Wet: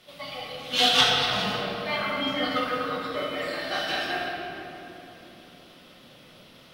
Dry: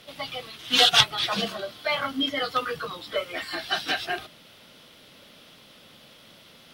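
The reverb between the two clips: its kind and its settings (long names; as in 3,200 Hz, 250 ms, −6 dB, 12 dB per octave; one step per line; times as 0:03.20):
rectangular room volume 200 cubic metres, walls hard, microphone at 1 metre
level −7 dB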